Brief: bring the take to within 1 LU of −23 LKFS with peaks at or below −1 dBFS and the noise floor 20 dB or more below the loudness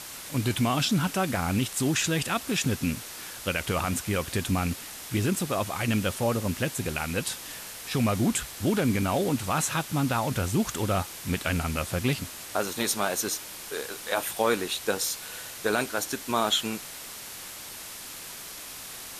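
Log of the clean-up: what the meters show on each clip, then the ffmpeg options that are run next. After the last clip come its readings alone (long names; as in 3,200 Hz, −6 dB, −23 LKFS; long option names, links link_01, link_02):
background noise floor −41 dBFS; target noise floor −49 dBFS; integrated loudness −28.5 LKFS; sample peak −11.5 dBFS; target loudness −23.0 LKFS
→ -af "afftdn=noise_reduction=8:noise_floor=-41"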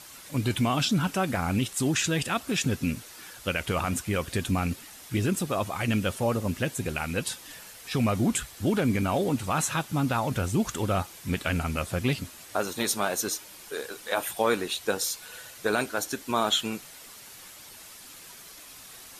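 background noise floor −47 dBFS; target noise floor −49 dBFS
→ -af "afftdn=noise_reduction=6:noise_floor=-47"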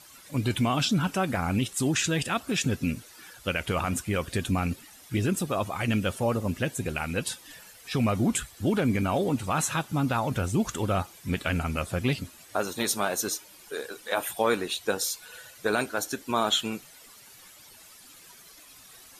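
background noise floor −52 dBFS; integrated loudness −28.5 LKFS; sample peak −12.0 dBFS; target loudness −23.0 LKFS
→ -af "volume=5.5dB"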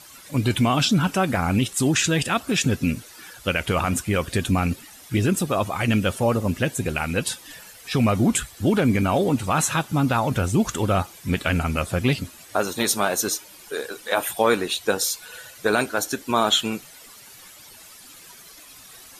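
integrated loudness −23.0 LKFS; sample peak −6.5 dBFS; background noise floor −46 dBFS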